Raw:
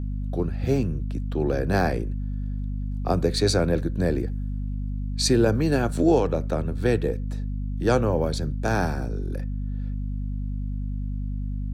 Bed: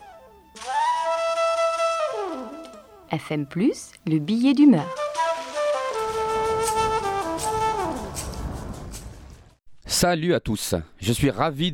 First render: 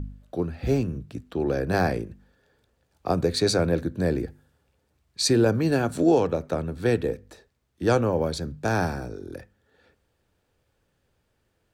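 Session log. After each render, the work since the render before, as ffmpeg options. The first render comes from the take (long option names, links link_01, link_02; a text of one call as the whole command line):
ffmpeg -i in.wav -af "bandreject=frequency=50:width_type=h:width=4,bandreject=frequency=100:width_type=h:width=4,bandreject=frequency=150:width_type=h:width=4,bandreject=frequency=200:width_type=h:width=4,bandreject=frequency=250:width_type=h:width=4" out.wav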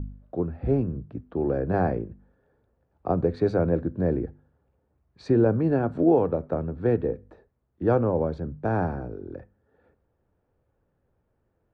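ffmpeg -i in.wav -af "lowpass=1100" out.wav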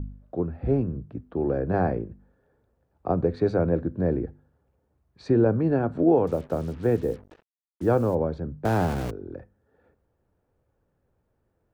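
ffmpeg -i in.wav -filter_complex "[0:a]asettb=1/sr,asplit=3[link_01][link_02][link_03];[link_01]atrim=end=6.274[link_04];[link_02]atrim=start=6.27:end=8.15,asetpts=PTS-STARTPTS,afade=type=in:duration=0.004:curve=qsin,afade=type=out:start_time=1.876:duration=0.004:curve=qsin,acrusher=bits=7:mix=0:aa=0.5[link_05];[link_03]atrim=start=8.146[link_06];[link_04][link_05]acrossfade=duration=0.004:curve1=hsin:curve2=qsin[link_07];[link_07][link_06]acrossfade=duration=0.004:curve1=qsin:curve2=hsin,asettb=1/sr,asplit=3[link_08][link_09][link_10];[link_08]atrim=end=8.654[link_11];[link_09]atrim=start=8.65:end=9.11,asetpts=PTS-STARTPTS,afade=type=in:duration=0.004:curve=qsin,afade=type=out:start_time=0.456:duration=0.004:curve=qsin,aeval=exprs='val(0)+0.5*0.0355*sgn(val(0))':channel_layout=same[link_12];[link_10]atrim=start=9.106[link_13];[link_11][link_12]acrossfade=duration=0.004:curve1=hsin:curve2=qsin[link_14];[link_14][link_13]acrossfade=duration=0.004:curve1=qsin:curve2=hsin" out.wav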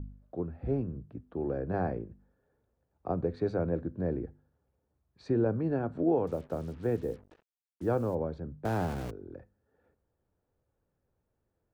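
ffmpeg -i in.wav -af "volume=-7.5dB" out.wav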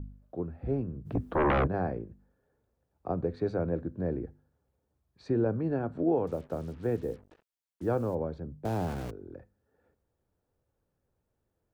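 ffmpeg -i in.wav -filter_complex "[0:a]asplit=3[link_01][link_02][link_03];[link_01]afade=type=out:start_time=1.05:duration=0.02[link_04];[link_02]aeval=exprs='0.0841*sin(PI/2*3.98*val(0)/0.0841)':channel_layout=same,afade=type=in:start_time=1.05:duration=0.02,afade=type=out:start_time=1.66:duration=0.02[link_05];[link_03]afade=type=in:start_time=1.66:duration=0.02[link_06];[link_04][link_05][link_06]amix=inputs=3:normalize=0,asettb=1/sr,asplit=3[link_07][link_08][link_09];[link_07]atrim=end=8.434[link_10];[link_08]atrim=start=8.43:end=8.87,asetpts=PTS-STARTPTS,afade=type=in:duration=0.004:curve=qsin,afade=type=out:start_time=0.436:duration=0.004:curve=qsin,equalizer=frequency=1500:width=1.5:gain=-7[link_11];[link_09]atrim=start=8.866[link_12];[link_10][link_11]acrossfade=duration=0.004:curve1=hsin:curve2=qsin[link_13];[link_13][link_12]acrossfade=duration=0.004:curve1=qsin:curve2=hsin" out.wav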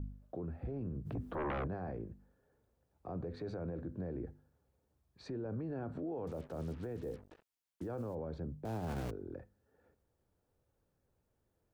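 ffmpeg -i in.wav -af "acompressor=threshold=-29dB:ratio=6,alimiter=level_in=9.5dB:limit=-24dB:level=0:latency=1:release=18,volume=-9.5dB" out.wav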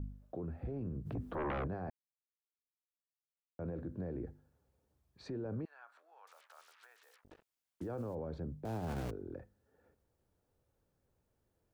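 ffmpeg -i in.wav -filter_complex "[0:a]asettb=1/sr,asplit=3[link_01][link_02][link_03];[link_01]atrim=end=5.654[link_04];[link_02]atrim=start=5.65:end=7.24,asetpts=PTS-STARTPTS,afade=type=in:duration=0.004:curve=qsin,afade=type=out:start_time=1.586:duration=0.004:curve=qsin,highpass=frequency=1100:width=0.5412,highpass=frequency=1100:width=1.3066[link_05];[link_03]atrim=start=7.236[link_06];[link_04][link_05]acrossfade=duration=0.004:curve1=hsin:curve2=qsin[link_07];[link_07][link_06]acrossfade=duration=0.004:curve1=qsin:curve2=hsin,asplit=3[link_08][link_09][link_10];[link_08]atrim=end=1.9,asetpts=PTS-STARTPTS,afade=type=out:start_time=1.896:duration=0.004:curve=hsin[link_11];[link_09]atrim=start=1.9:end=3.59,asetpts=PTS-STARTPTS,volume=0[link_12];[link_10]atrim=start=3.59,asetpts=PTS-STARTPTS,afade=type=in:duration=0.004:curve=hsin[link_13];[link_11][link_12][link_13]concat=n=3:v=0:a=1" out.wav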